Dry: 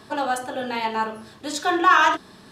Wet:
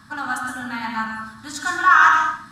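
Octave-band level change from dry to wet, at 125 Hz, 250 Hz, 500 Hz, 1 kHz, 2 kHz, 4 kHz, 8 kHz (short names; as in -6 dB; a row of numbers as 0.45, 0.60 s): +3.5, -3.0, -14.0, +2.0, +5.5, -3.5, +0.5 dB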